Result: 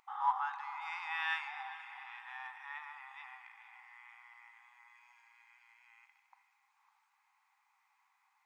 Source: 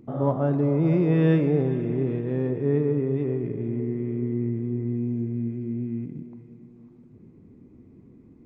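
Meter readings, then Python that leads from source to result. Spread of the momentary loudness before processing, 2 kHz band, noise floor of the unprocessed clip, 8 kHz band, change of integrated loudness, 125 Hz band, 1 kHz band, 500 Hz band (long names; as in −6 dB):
10 LU, +3.0 dB, −52 dBFS, can't be measured, −14.5 dB, below −40 dB, +1.5 dB, below −40 dB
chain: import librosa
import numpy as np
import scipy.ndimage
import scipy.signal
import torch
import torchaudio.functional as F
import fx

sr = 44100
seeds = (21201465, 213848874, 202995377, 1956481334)

y = fx.brickwall_highpass(x, sr, low_hz=760.0)
y = y * 10.0 ** (3.0 / 20.0)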